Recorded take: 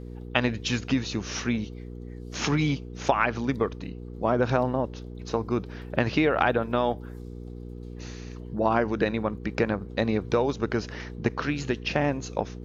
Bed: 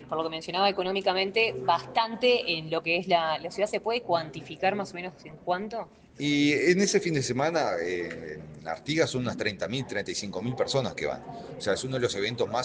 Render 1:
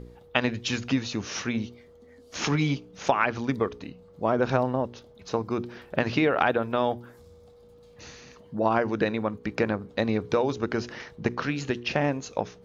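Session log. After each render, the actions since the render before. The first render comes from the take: de-hum 60 Hz, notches 7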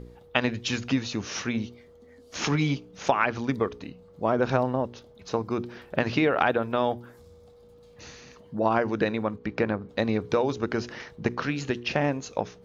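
9.36–9.89 s: distance through air 110 m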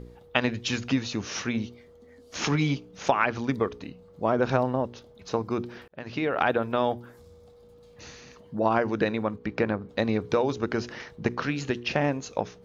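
5.88–6.52 s: fade in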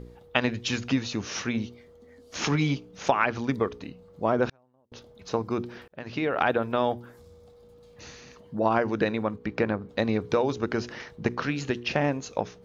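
4.48–4.92 s: inverted gate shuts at -23 dBFS, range -39 dB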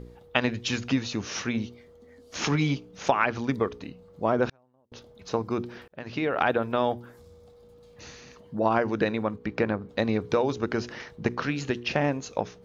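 no audible change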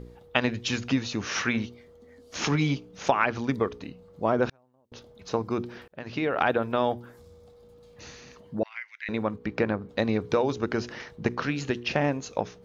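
1.21–1.66 s: peaking EQ 1.6 kHz +8.5 dB 1.7 oct; 8.63–9.09 s: ladder high-pass 2 kHz, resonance 85%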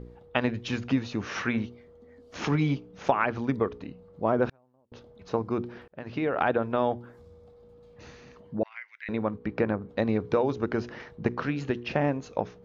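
low-pass 1.7 kHz 6 dB/octave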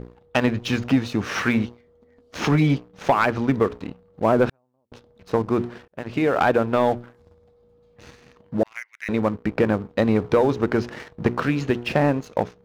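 waveshaping leveller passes 2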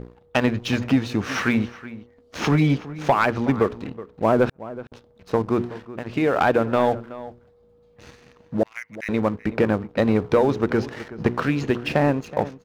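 echo from a far wall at 64 m, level -16 dB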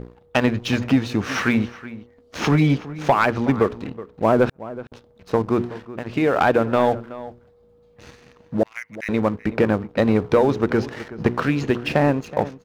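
trim +1.5 dB

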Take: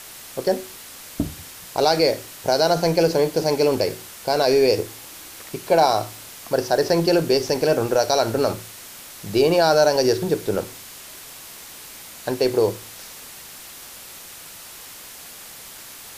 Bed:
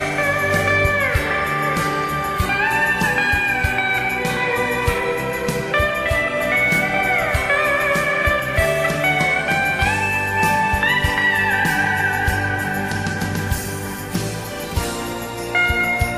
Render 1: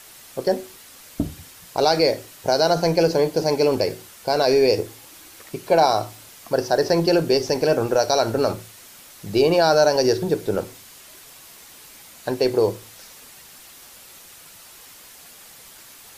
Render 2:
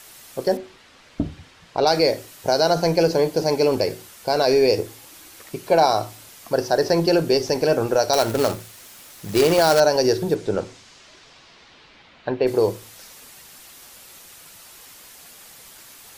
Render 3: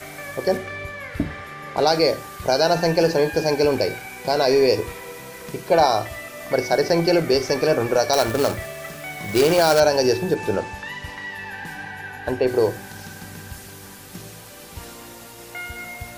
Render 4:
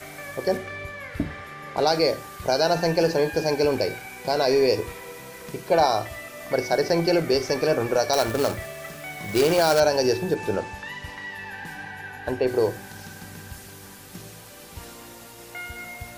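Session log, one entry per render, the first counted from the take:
noise reduction 6 dB, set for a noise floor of -40 dBFS
0.57–1.87 s: low-pass 3.7 kHz; 8.13–9.80 s: companded quantiser 4-bit; 10.34–12.46 s: low-pass 8.3 kHz -> 3.2 kHz 24 dB/octave
add bed -16 dB
trim -3 dB

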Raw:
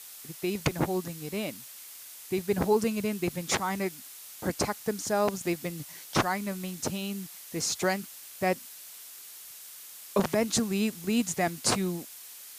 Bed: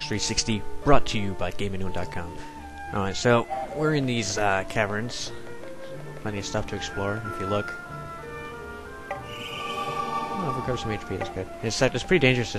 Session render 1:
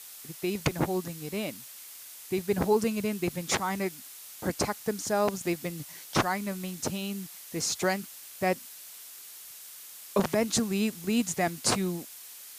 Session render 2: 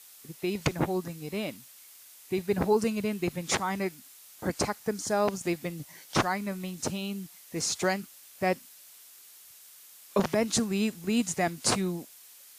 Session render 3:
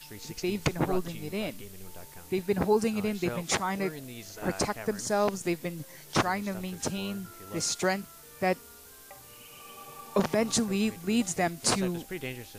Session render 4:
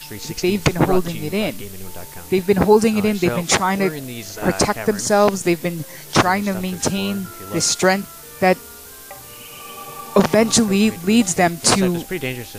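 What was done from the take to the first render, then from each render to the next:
no audible change
noise print and reduce 6 dB
add bed -17.5 dB
trim +12 dB; peak limiter -2 dBFS, peak gain reduction 1.5 dB

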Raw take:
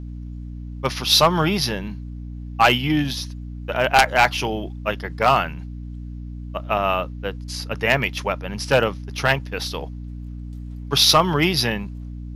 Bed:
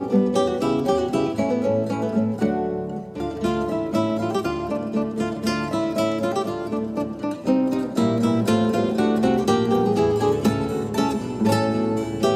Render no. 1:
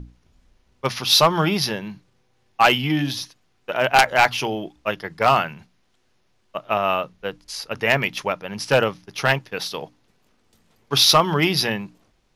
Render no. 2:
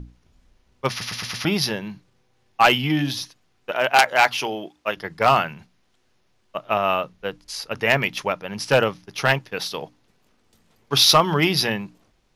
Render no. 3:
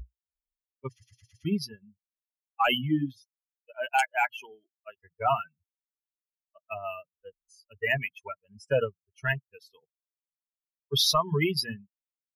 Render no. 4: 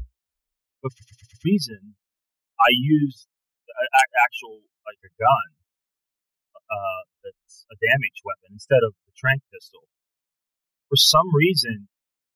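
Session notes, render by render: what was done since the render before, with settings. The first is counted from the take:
hum notches 60/120/180/240/300 Hz
0.90 s: stutter in place 0.11 s, 5 plays; 3.71–4.97 s: high-pass 340 Hz 6 dB/octave
expander on every frequency bin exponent 3; peak limiter -14.5 dBFS, peak gain reduction 7.5 dB
trim +8.5 dB

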